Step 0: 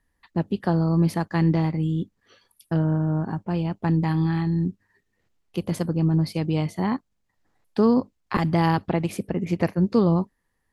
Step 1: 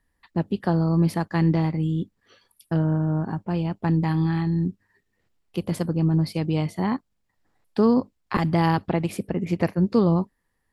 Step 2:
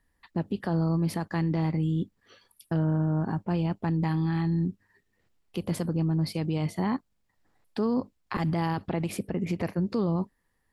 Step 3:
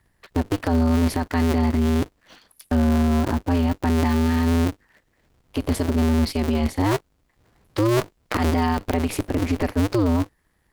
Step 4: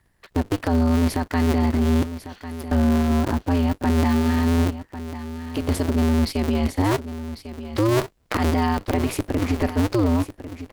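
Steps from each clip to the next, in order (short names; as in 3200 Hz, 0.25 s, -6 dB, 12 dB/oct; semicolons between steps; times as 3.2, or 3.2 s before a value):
notch 6300 Hz, Q 16
limiter -20 dBFS, peak gain reduction 10 dB
cycle switcher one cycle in 2, inverted; gain +7 dB
echo 1.098 s -12.5 dB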